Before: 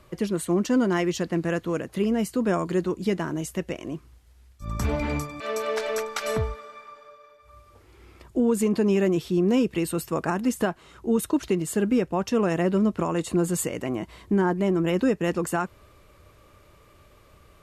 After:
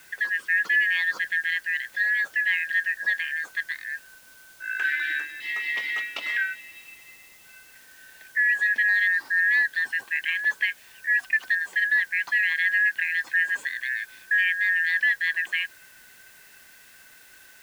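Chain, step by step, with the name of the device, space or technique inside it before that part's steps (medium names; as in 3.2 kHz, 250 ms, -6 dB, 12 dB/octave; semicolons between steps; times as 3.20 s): split-band scrambled radio (four frequency bands reordered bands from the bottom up 4123; band-pass 320–3000 Hz; white noise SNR 27 dB)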